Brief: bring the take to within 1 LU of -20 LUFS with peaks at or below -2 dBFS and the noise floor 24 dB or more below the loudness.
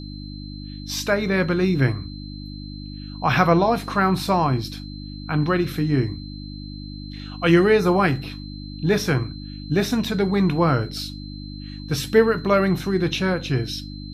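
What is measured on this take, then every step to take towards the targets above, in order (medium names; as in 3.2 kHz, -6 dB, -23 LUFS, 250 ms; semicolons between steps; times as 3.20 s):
hum 50 Hz; highest harmonic 300 Hz; hum level -33 dBFS; steady tone 4.1 kHz; tone level -42 dBFS; loudness -21.5 LUFS; peak level -2.5 dBFS; loudness target -20.0 LUFS
-> de-hum 50 Hz, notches 6; band-stop 4.1 kHz, Q 30; trim +1.5 dB; peak limiter -2 dBFS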